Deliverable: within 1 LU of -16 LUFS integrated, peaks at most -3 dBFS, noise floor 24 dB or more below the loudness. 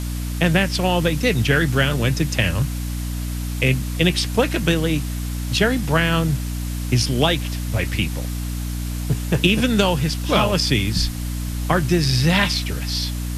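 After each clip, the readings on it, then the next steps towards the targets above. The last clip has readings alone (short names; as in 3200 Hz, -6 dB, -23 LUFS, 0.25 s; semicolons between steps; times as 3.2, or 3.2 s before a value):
hum 60 Hz; harmonics up to 300 Hz; hum level -23 dBFS; noise floor -26 dBFS; noise floor target -45 dBFS; loudness -20.5 LUFS; peak -3.5 dBFS; loudness target -16.0 LUFS
-> notches 60/120/180/240/300 Hz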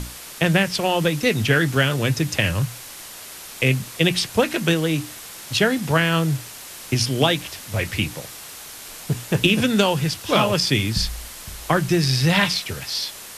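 hum none; noise floor -38 dBFS; noise floor target -45 dBFS
-> denoiser 7 dB, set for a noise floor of -38 dBFS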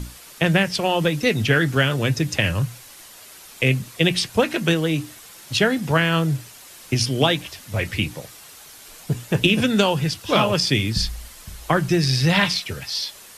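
noise floor -44 dBFS; noise floor target -45 dBFS
-> denoiser 6 dB, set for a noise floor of -44 dBFS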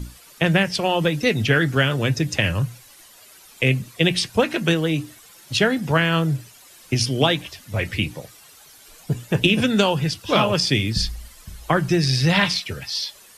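noise floor -48 dBFS; loudness -21.0 LUFS; peak -3.5 dBFS; loudness target -16.0 LUFS
-> gain +5 dB; limiter -3 dBFS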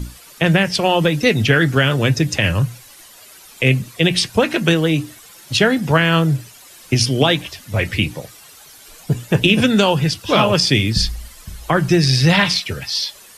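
loudness -16.5 LUFS; peak -3.0 dBFS; noise floor -43 dBFS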